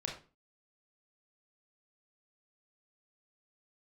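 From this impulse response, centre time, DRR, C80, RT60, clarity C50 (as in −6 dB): 26 ms, 0.0 dB, 12.0 dB, 0.35 s, 6.5 dB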